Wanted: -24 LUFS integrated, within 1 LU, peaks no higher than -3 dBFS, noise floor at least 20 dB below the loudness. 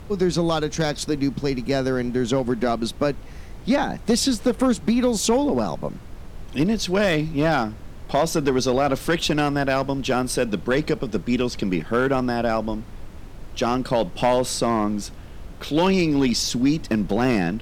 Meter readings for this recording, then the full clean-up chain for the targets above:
clipped samples 0.9%; clipping level -12.0 dBFS; noise floor -38 dBFS; noise floor target -43 dBFS; loudness -22.5 LUFS; peak level -12.0 dBFS; loudness target -24.0 LUFS
-> clip repair -12 dBFS; noise print and reduce 6 dB; trim -1.5 dB

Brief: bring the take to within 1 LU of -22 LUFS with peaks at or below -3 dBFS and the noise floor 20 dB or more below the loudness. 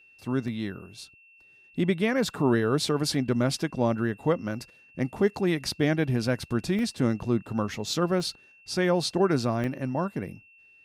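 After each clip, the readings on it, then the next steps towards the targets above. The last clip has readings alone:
dropouts 4; longest dropout 1.2 ms; steady tone 2.7 kHz; tone level -54 dBFS; loudness -27.0 LUFS; peak level -10.5 dBFS; loudness target -22.0 LUFS
-> interpolate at 0.48/6.79/8.20/9.64 s, 1.2 ms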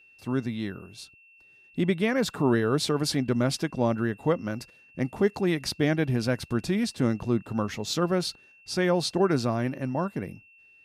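dropouts 0; steady tone 2.7 kHz; tone level -54 dBFS
-> band-stop 2.7 kHz, Q 30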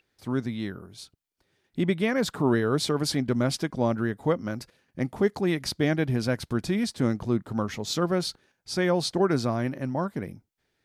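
steady tone not found; loudness -27.0 LUFS; peak level -10.5 dBFS; loudness target -22.0 LUFS
-> trim +5 dB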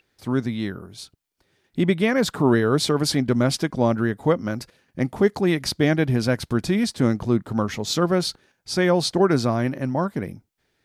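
loudness -22.0 LUFS; peak level -5.5 dBFS; noise floor -72 dBFS

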